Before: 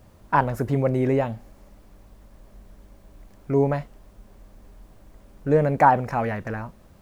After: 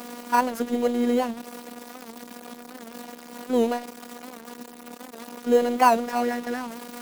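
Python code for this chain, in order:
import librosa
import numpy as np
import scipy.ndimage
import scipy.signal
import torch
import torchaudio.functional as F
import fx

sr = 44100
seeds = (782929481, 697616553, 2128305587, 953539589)

p1 = x + 0.5 * 10.0 ** (-28.0 / 20.0) * np.sign(x)
p2 = fx.sample_hold(p1, sr, seeds[0], rate_hz=3500.0, jitter_pct=0)
p3 = p1 + (p2 * librosa.db_to_amplitude(-8.0))
p4 = scipy.signal.sosfilt(scipy.signal.butter(6, 180.0, 'highpass', fs=sr, output='sos'), p3)
p5 = fx.robotise(p4, sr, hz=241.0)
p6 = fx.record_warp(p5, sr, rpm=78.0, depth_cents=100.0)
y = p6 * librosa.db_to_amplitude(-2.0)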